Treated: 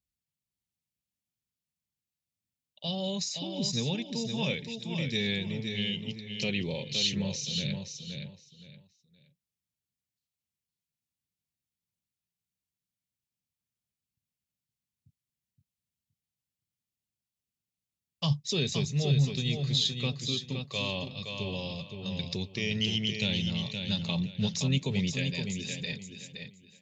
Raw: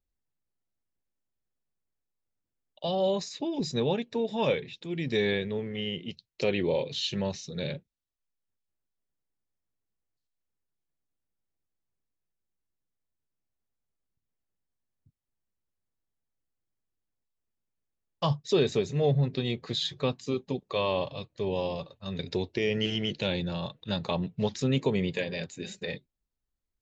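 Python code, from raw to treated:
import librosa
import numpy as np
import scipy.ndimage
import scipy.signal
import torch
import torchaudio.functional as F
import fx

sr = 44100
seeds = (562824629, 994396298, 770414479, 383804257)

p1 = fx.band_shelf(x, sr, hz=700.0, db=-12.0, octaves=2.9)
p2 = p1 + fx.echo_feedback(p1, sr, ms=519, feedback_pct=26, wet_db=-6, dry=0)
p3 = fx.dynamic_eq(p2, sr, hz=6000.0, q=1.5, threshold_db=-55.0, ratio=4.0, max_db=6)
p4 = scipy.signal.sosfilt(scipy.signal.butter(2, 82.0, 'highpass', fs=sr, output='sos'), p3)
y = p4 * 10.0 ** (1.5 / 20.0)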